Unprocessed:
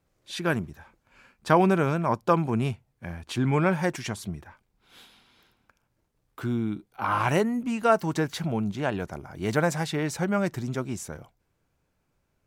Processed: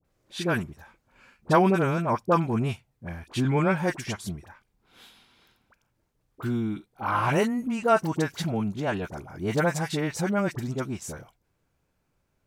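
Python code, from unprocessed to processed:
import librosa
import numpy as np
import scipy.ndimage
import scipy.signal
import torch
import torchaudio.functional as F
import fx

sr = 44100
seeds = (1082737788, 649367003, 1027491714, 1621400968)

y = fx.dispersion(x, sr, late='highs', ms=47.0, hz=1100.0)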